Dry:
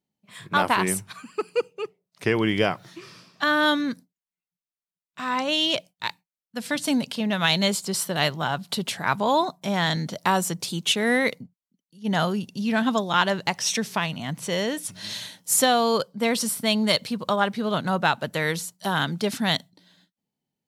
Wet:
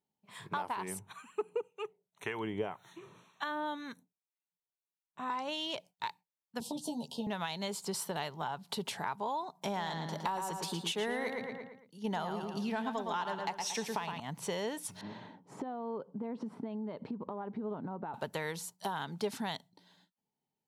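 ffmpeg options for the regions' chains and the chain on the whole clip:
-filter_complex "[0:a]asettb=1/sr,asplit=3[s0][s1][s2];[s0]atrim=end=0.994[s3];[s1]atrim=start=0.99:end=5.3,asetpts=PTS-STARTPTS,afade=t=in:d=0.004:c=qsin,afade=t=out:st=4.306:d=0.004:c=qsin,acrossover=split=930[s4][s5];[s4]aeval=exprs='val(0)*(1-0.7/2+0.7/2*cos(2*PI*1.9*n/s))':c=same[s6];[s5]aeval=exprs='val(0)*(1-0.7/2-0.7/2*cos(2*PI*1.9*n/s))':c=same[s7];[s6][s7]amix=inputs=2:normalize=0,asuperstop=centerf=4900:order=12:qfactor=3.3[s8];[s2]atrim=start=5.296[s9];[s3][s8]acrossfade=d=0.004:c1=hsin:c2=qsin[s10];[s10][s9]acrossfade=d=0.004:c1=qsin:c2=hsin,asettb=1/sr,asplit=3[s11][s12][s13];[s11]atrim=end=6.604[s14];[s12]atrim=start=6.6:end=7.27,asetpts=PTS-STARTPTS,afade=t=in:d=0.004:c=qsin,afade=t=out:st=0.666:d=0.004:c=qsin,acrossover=split=190|560[s15][s16][s17];[s15]acompressor=threshold=0.0126:ratio=4[s18];[s16]acompressor=threshold=0.0224:ratio=4[s19];[s17]acompressor=threshold=0.0158:ratio=4[s20];[s18][s19][s20]amix=inputs=3:normalize=0,asuperstop=centerf=1700:order=8:qfactor=0.8,asplit=2[s21][s22];[s22]adelay=13,volume=0.794[s23];[s21][s23]amix=inputs=2:normalize=0,atrim=end_sample=29547[s24];[s13]atrim=start=7.266[s25];[s14][s24]acrossfade=d=0.004:c1=hsin:c2=qsin[s26];[s26][s25]acrossfade=d=0.004:c1=qsin:c2=hsin,asettb=1/sr,asplit=3[s27][s28][s29];[s27]atrim=end=9.554[s30];[s28]atrim=start=9.55:end=14.2,asetpts=PTS-STARTPTS,afade=t=in:d=0.004:c=qsin,afade=t=out:st=4.646:d=0.004:c=qsin,highpass=150,acontrast=53,asplit=2[s31][s32];[s32]adelay=113,lowpass=f=4300:p=1,volume=0.501,asplit=2[s33][s34];[s34]adelay=113,lowpass=f=4300:p=1,volume=0.4,asplit=2[s35][s36];[s36]adelay=113,lowpass=f=4300:p=1,volume=0.4,asplit=2[s37][s38];[s38]adelay=113,lowpass=f=4300:p=1,volume=0.4,asplit=2[s39][s40];[s40]adelay=113,lowpass=f=4300:p=1,volume=0.4[s41];[s31][s33][s35][s37][s39][s41]amix=inputs=6:normalize=0,atrim=end_sample=205065[s42];[s29]atrim=start=14.196[s43];[s30][s42]acrossfade=d=0.004:c1=hsin:c2=qsin[s44];[s44][s43]acrossfade=d=0.004:c1=qsin:c2=hsin,asettb=1/sr,asplit=3[s45][s46][s47];[s45]atrim=end=15.014[s48];[s46]atrim=start=15.01:end=18.14,asetpts=PTS-STARTPTS,afade=t=in:d=0.004:c=qsin,afade=t=out:st=3.126:d=0.004:c=qsin,lowpass=1300,acompressor=threshold=0.0158:ratio=16:attack=3.2:release=140:knee=1:detection=peak,equalizer=f=270:w=1.1:g=11.5[s49];[s47]atrim=start=18.136[s50];[s48][s49]acrossfade=d=0.004:c1=hsin:c2=qsin[s51];[s51][s50]acrossfade=d=0.004:c1=qsin:c2=hsin,equalizer=f=890:t=o:w=0.54:g=10.5,acompressor=threshold=0.0447:ratio=6,equalizer=f=420:t=o:w=0.22:g=7.5,volume=0.422"

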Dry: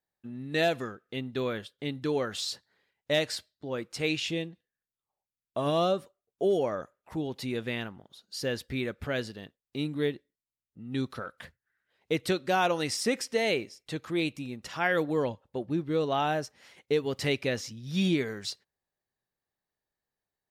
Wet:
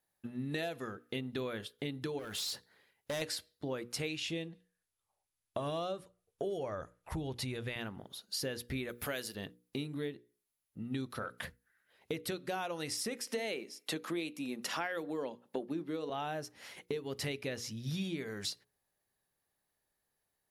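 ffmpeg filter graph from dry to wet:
-filter_complex "[0:a]asettb=1/sr,asplit=3[s0][s1][s2];[s0]atrim=end=2.194[s3];[s1]atrim=start=2.19:end=3.22,asetpts=PTS-STARTPTS,afade=t=in:d=0.004:c=qsin,afade=t=out:st=1.026:d=0.004:c=qsin,acompressor=threshold=0.02:ratio=2.5:attack=3.2:release=140:knee=1:detection=peak,asoftclip=type=hard:threshold=0.0168,acrusher=bits=6:mode=log:mix=0:aa=0.000001[s4];[s2]atrim=start=3.216[s5];[s3][s4]acrossfade=d=0.004:c1=hsin:c2=qsin[s6];[s6][s5]acrossfade=d=0.004:c1=qsin:c2=hsin,asettb=1/sr,asplit=3[s7][s8][s9];[s7]atrim=end=4.154[s10];[s8]atrim=start=4.15:end=7.76,asetpts=PTS-STARTPTS,afade=t=in:d=0.004:c=qsin,afade=t=out:st=3.606:d=0.004:c=qsin,lowpass=f=11000:w=0.5412,lowpass=f=11000:w=1.3066,asubboost=boost=7:cutoff=94[s11];[s9]atrim=start=7.756[s12];[s10][s11]acrossfade=d=0.004:c1=hsin:c2=qsin[s13];[s13][s12]acrossfade=d=0.004:c1=qsin:c2=hsin,asettb=1/sr,asplit=3[s14][s15][s16];[s14]atrim=end=8.894[s17];[s15]atrim=start=8.89:end=9.35,asetpts=PTS-STARTPTS,afade=t=in:d=0.004:c=qsin,afade=t=out:st=0.456:d=0.004:c=qsin,aemphasis=mode=production:type=bsi,acompressor=mode=upward:threshold=0.00224:ratio=2.5:attack=3.2:release=140:knee=2.83:detection=peak[s18];[s16]atrim=start=9.346[s19];[s17][s18]acrossfade=d=0.004:c1=hsin:c2=qsin[s20];[s20][s19]acrossfade=d=0.004:c1=qsin:c2=hsin,asettb=1/sr,asplit=3[s21][s22][s23];[s21]atrim=end=13.274[s24];[s22]atrim=start=13.27:end=16.1,asetpts=PTS-STARTPTS,afade=t=in:d=0.004:c=qsin,afade=t=out:st=2.826:d=0.004:c=qsin,highpass=f=190:w=0.5412,highpass=f=190:w=1.3066,acontrast=50[s25];[s23]atrim=start=16.096[s26];[s24][s25]acrossfade=d=0.004:c1=hsin:c2=qsin[s27];[s27][s26]acrossfade=d=0.004:c1=qsin:c2=hsin,equalizer=f=11000:w=4.1:g=13,acompressor=threshold=0.0112:ratio=10,bandreject=f=60:t=h:w=6,bandreject=f=120:t=h:w=6,bandreject=f=180:t=h:w=6,bandreject=f=240:t=h:w=6,bandreject=f=300:t=h:w=6,bandreject=f=360:t=h:w=6,bandreject=f=420:t=h:w=6,bandreject=f=480:t=h:w=6,volume=1.68"

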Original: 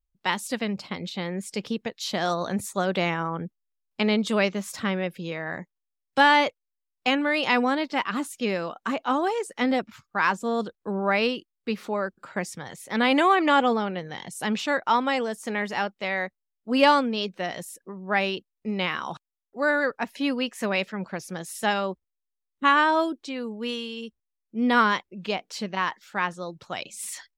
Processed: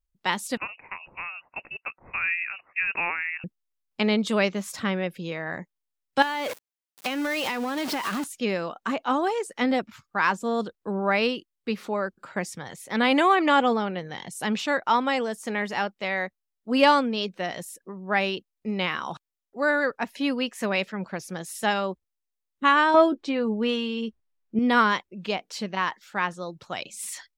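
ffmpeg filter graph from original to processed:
-filter_complex "[0:a]asettb=1/sr,asplit=3[s0][s1][s2];[s0]atrim=end=0.574[s3];[s1]atrim=start=0.57:end=3.44,asetpts=PTS-STARTPTS,afade=t=in:d=0.004:c=qsin,afade=t=out:st=2.866:d=0.004:c=qsin,highpass=f=450:w=0.5412,highpass=f=450:w=1.3066,lowpass=f=2600:t=q:w=0.5098,lowpass=f=2600:t=q:w=0.6013,lowpass=f=2600:t=q:w=0.9,lowpass=f=2600:t=q:w=2.563,afreqshift=-3100[s4];[s2]atrim=start=3.436[s5];[s3][s4]acrossfade=d=0.004:c1=hsin:c2=qsin[s6];[s6][s5]acrossfade=d=0.004:c1=qsin:c2=hsin,asettb=1/sr,asplit=3[s7][s8][s9];[s7]atrim=end=6.224[s10];[s8]atrim=start=6.22:end=8.24,asetpts=PTS-STARTPTS,afade=t=in:d=0.004:c=qsin,afade=t=out:st=2.016:d=0.004:c=qsin,aeval=exprs='val(0)+0.5*0.0562*sgn(val(0))':c=same,highpass=170,acompressor=threshold=0.0708:ratio=16:attack=3.2:release=140:knee=1:detection=peak[s11];[s9]atrim=start=8.236[s12];[s10][s11]acrossfade=d=0.004:c1=hsin:c2=qsin[s13];[s13][s12]acrossfade=d=0.004:c1=qsin:c2=hsin,asettb=1/sr,asplit=3[s14][s15][s16];[s14]atrim=end=22.944[s17];[s15]atrim=start=22.94:end=24.59,asetpts=PTS-STARTPTS,afade=t=in:d=0.004:c=qsin,afade=t=out:st=1.646:d=0.004:c=qsin,lowpass=f=2000:p=1,acontrast=83,asplit=2[s18][s19];[s19]adelay=14,volume=0.282[s20];[s18][s20]amix=inputs=2:normalize=0,atrim=end_sample=72765[s21];[s16]atrim=start=24.586[s22];[s17][s21]acrossfade=d=0.004:c1=hsin:c2=qsin[s23];[s23][s22]acrossfade=d=0.004:c1=qsin:c2=hsin"

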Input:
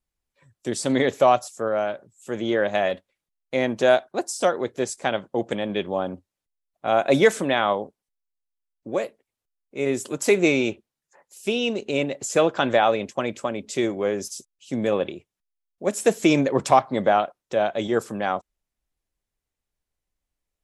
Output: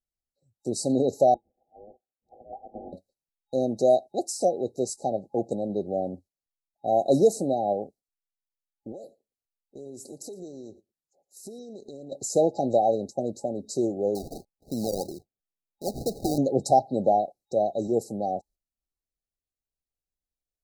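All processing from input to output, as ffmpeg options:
-filter_complex "[0:a]asettb=1/sr,asplit=3[s0][s1][s2];[s0]atrim=end=1.344[s3];[s1]atrim=start=1.34:end=2.93,asetpts=PTS-STARTPTS,afade=t=in:d=0.004:c=qsin,afade=t=out:st=1.586:d=0.004:c=qsin,aecho=1:1:7.4:0.78,atrim=end_sample=70119,lowpass=f=2400:t=q:w=0.5098,lowpass=f=2400:t=q:w=0.6013,lowpass=f=2400:t=q:w=0.9,lowpass=f=2400:t=q:w=2.563,afreqshift=-2800[s4];[s2]atrim=start=2.926[s5];[s3][s4]acrossfade=d=0.004:c1=hsin:c2=qsin[s6];[s6][s5]acrossfade=d=0.004:c1=qsin:c2=hsin,asettb=1/sr,asplit=3[s7][s8][s9];[s7]atrim=end=8.924[s10];[s8]atrim=start=8.92:end=12.12,asetpts=PTS-STARTPTS,afade=t=in:d=0.004:c=qsin,afade=t=out:st=3.196:d=0.004:c=qsin,acompressor=threshold=0.0158:ratio=6:attack=3.2:release=140:knee=1:detection=peak,aecho=1:1:115:0.1,atrim=end_sample=141120[s11];[s9]atrim=start=12.116[s12];[s10][s11]acrossfade=d=0.004:c1=hsin:c2=qsin[s13];[s13][s12]acrossfade=d=0.004:c1=qsin:c2=hsin,asettb=1/sr,asplit=3[s14][s15][s16];[s14]atrim=end=14.154[s17];[s15]atrim=start=14.15:end=16.38,asetpts=PTS-STARTPTS,afade=t=in:d=0.004:c=qsin,afade=t=out:st=2.226:d=0.004:c=qsin,acompressor=threshold=0.0708:ratio=2.5:attack=3.2:release=140:knee=1:detection=peak,acrusher=samples=33:mix=1:aa=0.000001:lfo=1:lforange=19.8:lforate=2.9[s18];[s16]atrim=start=16.376[s19];[s17][s18]acrossfade=d=0.004:c1=hsin:c2=qsin[s20];[s20][s19]acrossfade=d=0.004:c1=qsin:c2=hsin,agate=range=0.355:threshold=0.00398:ratio=16:detection=peak,afftfilt=real='re*(1-between(b*sr/4096,830,3800))':imag='im*(1-between(b*sr/4096,830,3800))':win_size=4096:overlap=0.75,volume=0.794"

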